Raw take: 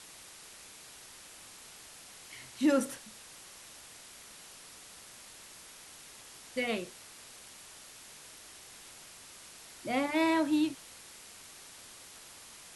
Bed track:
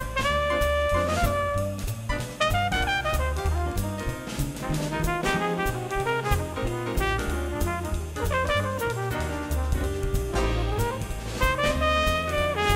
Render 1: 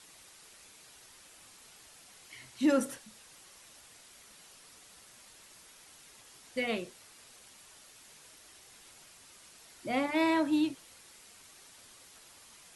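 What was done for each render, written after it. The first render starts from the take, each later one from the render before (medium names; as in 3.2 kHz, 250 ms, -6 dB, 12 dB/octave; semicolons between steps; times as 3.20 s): noise reduction 6 dB, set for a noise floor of -52 dBFS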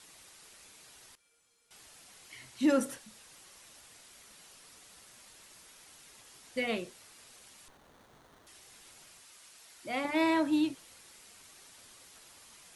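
1.15–1.71 s: feedback comb 470 Hz, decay 0.23 s, harmonics odd, mix 90%; 7.68–8.47 s: sliding maximum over 17 samples; 9.20–10.05 s: bass shelf 480 Hz -9 dB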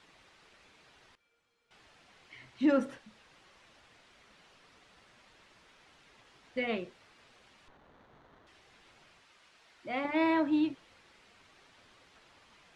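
low-pass 3 kHz 12 dB/octave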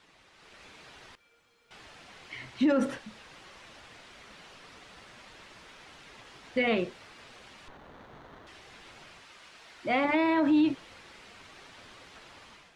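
level rider gain up to 10 dB; peak limiter -17.5 dBFS, peak gain reduction 10.5 dB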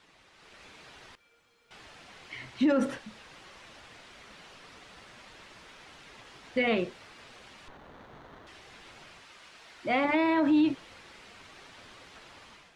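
no audible change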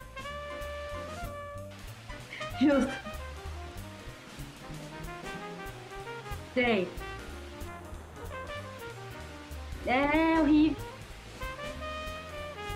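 add bed track -15.5 dB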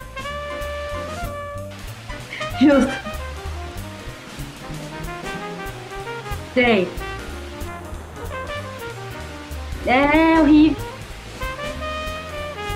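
trim +11 dB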